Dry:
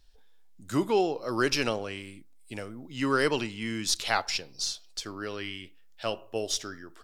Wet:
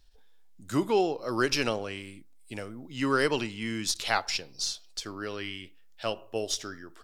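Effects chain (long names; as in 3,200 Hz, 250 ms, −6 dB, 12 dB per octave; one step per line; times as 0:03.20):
every ending faded ahead of time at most 360 dB per second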